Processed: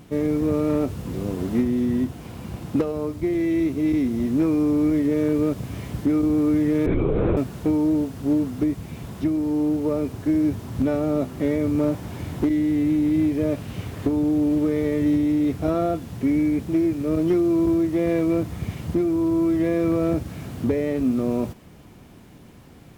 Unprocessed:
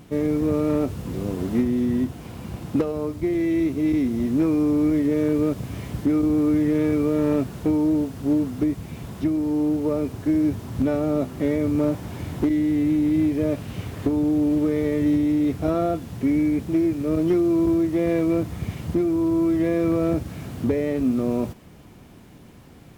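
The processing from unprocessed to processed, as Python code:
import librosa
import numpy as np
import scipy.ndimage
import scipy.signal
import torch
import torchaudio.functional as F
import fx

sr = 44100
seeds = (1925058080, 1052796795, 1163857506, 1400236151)

y = fx.lpc_vocoder(x, sr, seeds[0], excitation='whisper', order=10, at=(6.86, 7.37))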